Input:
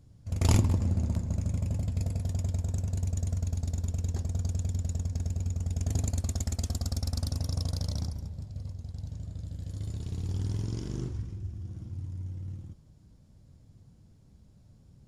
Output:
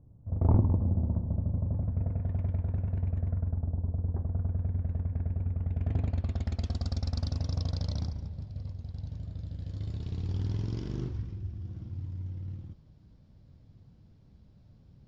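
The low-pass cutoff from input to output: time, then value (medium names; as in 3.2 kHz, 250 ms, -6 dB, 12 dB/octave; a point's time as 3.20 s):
low-pass 24 dB/octave
1.56 s 1 kHz
2.39 s 2.2 kHz
3.15 s 2.2 kHz
3.81 s 1 kHz
4.91 s 2 kHz
5.50 s 2 kHz
6.84 s 4.8 kHz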